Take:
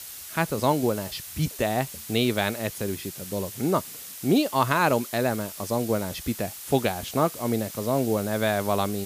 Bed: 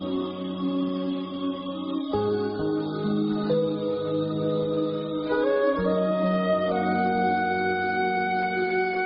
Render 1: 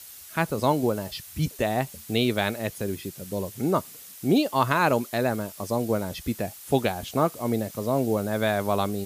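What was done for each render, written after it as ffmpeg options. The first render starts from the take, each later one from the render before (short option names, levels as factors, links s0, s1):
-af "afftdn=nr=6:nf=-40"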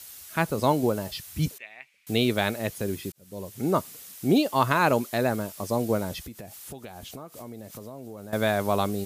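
-filter_complex "[0:a]asettb=1/sr,asplit=3[s0][s1][s2];[s0]atrim=end=1.584[s3];[s1]atrim=start=1.58:end=2.07,asetpts=PTS-STARTPTS,afade=t=in:d=0.004:c=qsin,afade=t=out:st=0.486:d=0.004:c=qsin,bandpass=f=2300:t=q:w=7.5[s4];[s2]atrim=start=2.066[s5];[s3][s4]acrossfade=d=0.004:c1=hsin:c2=qsin[s6];[s6][s5]acrossfade=d=0.004:c1=qsin:c2=hsin,asettb=1/sr,asplit=3[s7][s8][s9];[s7]atrim=end=6.224[s10];[s8]atrim=start=6.22:end=8.33,asetpts=PTS-STARTPTS,afade=t=in:d=0.004:c=qsin,afade=t=out:st=2.106:d=0.004:c=qsin,acompressor=threshold=0.0141:ratio=8:attack=3.2:release=140:knee=1:detection=peak[s11];[s9]atrim=start=8.326[s12];[s10][s11]acrossfade=d=0.004:c1=hsin:c2=qsin[s13];[s13][s12]acrossfade=d=0.004:c1=qsin:c2=hsin,asplit=2[s14][s15];[s14]atrim=end=3.12,asetpts=PTS-STARTPTS,afade=t=out:st=3.116:d=0.004:c=hsin[s16];[s15]atrim=start=3.12,asetpts=PTS-STARTPTS,afade=t=in:d=0.63[s17];[s16][s17]concat=n=2:v=0:a=1"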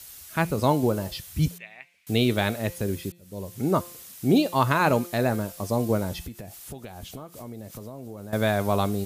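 -af "lowshelf=f=120:g=8.5,bandreject=f=174.3:t=h:w=4,bandreject=f=348.6:t=h:w=4,bandreject=f=522.9:t=h:w=4,bandreject=f=697.2:t=h:w=4,bandreject=f=871.5:t=h:w=4,bandreject=f=1045.8:t=h:w=4,bandreject=f=1220.1:t=h:w=4,bandreject=f=1394.4:t=h:w=4,bandreject=f=1568.7:t=h:w=4,bandreject=f=1743:t=h:w=4,bandreject=f=1917.3:t=h:w=4,bandreject=f=2091.6:t=h:w=4,bandreject=f=2265.9:t=h:w=4,bandreject=f=2440.2:t=h:w=4,bandreject=f=2614.5:t=h:w=4,bandreject=f=2788.8:t=h:w=4,bandreject=f=2963.1:t=h:w=4,bandreject=f=3137.4:t=h:w=4,bandreject=f=3311.7:t=h:w=4,bandreject=f=3486:t=h:w=4,bandreject=f=3660.3:t=h:w=4,bandreject=f=3834.6:t=h:w=4,bandreject=f=4008.9:t=h:w=4,bandreject=f=4183.2:t=h:w=4,bandreject=f=4357.5:t=h:w=4"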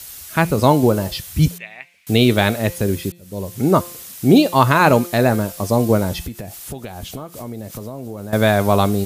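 -af "volume=2.66,alimiter=limit=0.891:level=0:latency=1"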